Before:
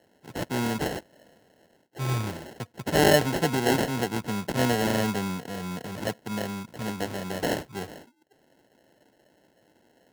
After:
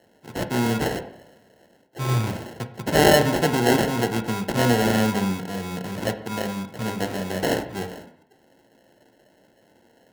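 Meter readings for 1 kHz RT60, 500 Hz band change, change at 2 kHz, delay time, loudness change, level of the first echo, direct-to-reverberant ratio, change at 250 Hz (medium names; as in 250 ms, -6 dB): 0.75 s, +4.5 dB, +4.0 dB, no echo, +4.5 dB, no echo, 7.0 dB, +4.5 dB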